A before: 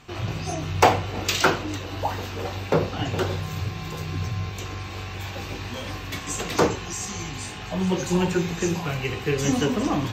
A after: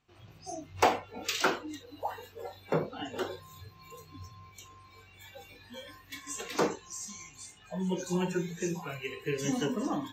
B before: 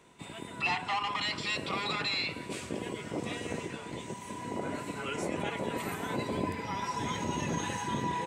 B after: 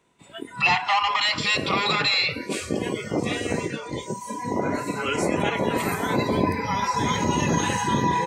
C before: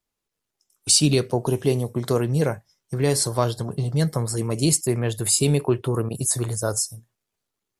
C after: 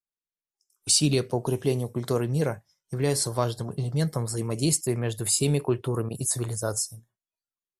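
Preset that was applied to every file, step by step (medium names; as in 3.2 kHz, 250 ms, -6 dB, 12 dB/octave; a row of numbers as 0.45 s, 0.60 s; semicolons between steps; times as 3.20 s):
spectral noise reduction 17 dB; peak normalisation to -9 dBFS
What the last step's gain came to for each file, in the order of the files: -8.0 dB, +10.5 dB, -4.0 dB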